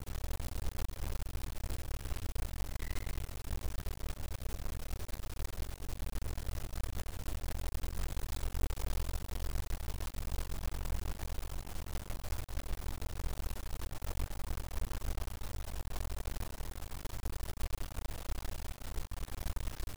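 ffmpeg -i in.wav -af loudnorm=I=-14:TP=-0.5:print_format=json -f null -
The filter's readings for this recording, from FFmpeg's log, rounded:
"input_i" : "-43.0",
"input_tp" : "-21.4",
"input_lra" : "2.4",
"input_thresh" : "-53.0",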